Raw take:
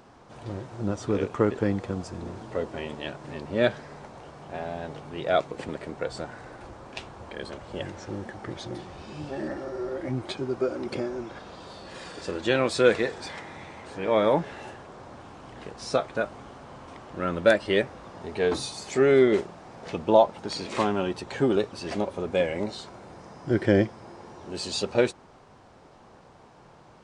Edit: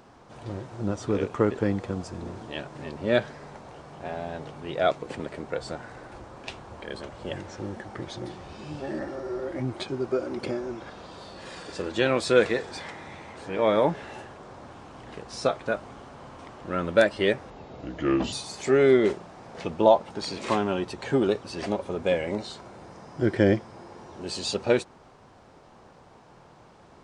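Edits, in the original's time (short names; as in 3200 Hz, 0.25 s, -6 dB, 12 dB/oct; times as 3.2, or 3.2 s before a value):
2.48–2.97 cut
17.99–18.61 speed 75%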